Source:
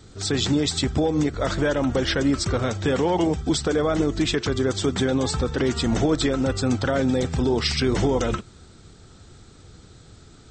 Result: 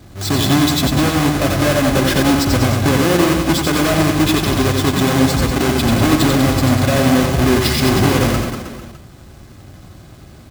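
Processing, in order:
each half-wave held at its own peak
notch comb filter 460 Hz
reverse bouncing-ball delay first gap 90 ms, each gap 1.15×, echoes 5
level +2.5 dB

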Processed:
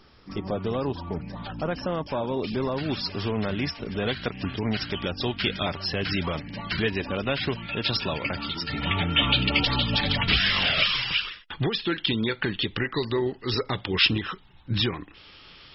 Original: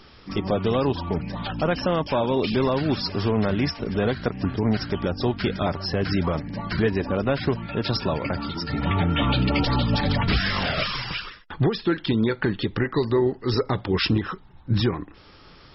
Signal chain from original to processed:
parametric band 3,000 Hz −2.5 dB 1.3 octaves, from 0:02.78 +7 dB, from 0:04.06 +14 dB
level −5.5 dB

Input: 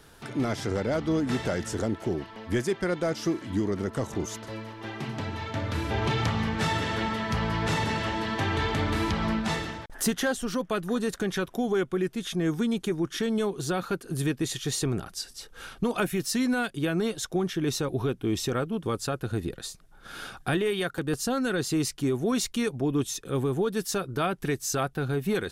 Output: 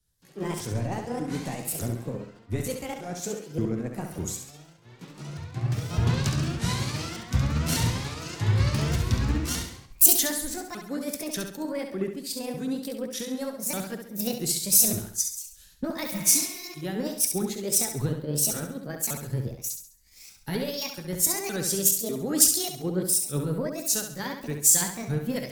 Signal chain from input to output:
pitch shifter swept by a sawtooth +8.5 semitones, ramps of 597 ms
bass and treble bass +9 dB, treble +14 dB
flutter between parallel walls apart 11.7 metres, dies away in 0.75 s
healed spectral selection 0:16.14–0:16.65, 310–3,800 Hz both
multiband upward and downward expander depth 100%
level −6.5 dB

